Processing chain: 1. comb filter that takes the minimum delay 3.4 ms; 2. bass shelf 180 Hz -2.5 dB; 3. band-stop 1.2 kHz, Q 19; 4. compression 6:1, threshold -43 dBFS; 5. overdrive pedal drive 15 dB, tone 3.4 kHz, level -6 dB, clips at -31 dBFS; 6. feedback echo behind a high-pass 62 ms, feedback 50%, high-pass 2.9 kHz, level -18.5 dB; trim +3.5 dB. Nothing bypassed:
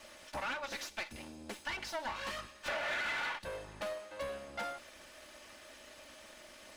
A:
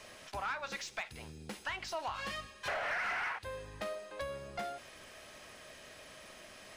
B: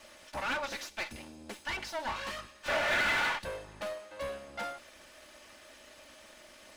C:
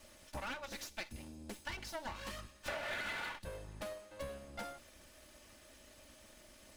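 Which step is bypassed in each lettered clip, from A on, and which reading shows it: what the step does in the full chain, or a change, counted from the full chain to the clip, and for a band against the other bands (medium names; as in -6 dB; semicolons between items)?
1, 125 Hz band +4.0 dB; 4, mean gain reduction 3.0 dB; 5, crest factor change +4.5 dB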